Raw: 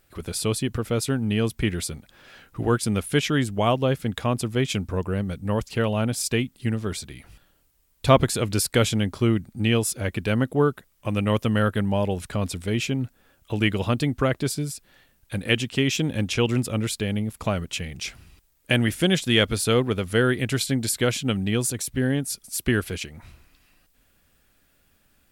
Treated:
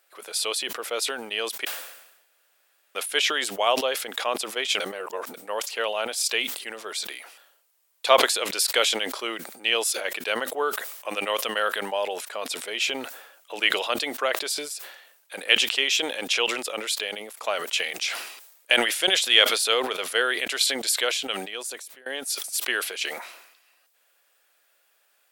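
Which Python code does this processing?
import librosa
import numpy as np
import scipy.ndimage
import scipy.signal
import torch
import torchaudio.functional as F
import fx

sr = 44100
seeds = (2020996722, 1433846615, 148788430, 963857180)

y = fx.edit(x, sr, fx.room_tone_fill(start_s=1.65, length_s=1.3),
    fx.reverse_span(start_s=4.8, length_s=0.54),
    fx.fade_out_to(start_s=20.92, length_s=1.14, floor_db=-23.0), tone=tone)
y = fx.dynamic_eq(y, sr, hz=3600.0, q=1.0, threshold_db=-41.0, ratio=4.0, max_db=6)
y = scipy.signal.sosfilt(scipy.signal.butter(4, 510.0, 'highpass', fs=sr, output='sos'), y)
y = fx.sustainer(y, sr, db_per_s=62.0)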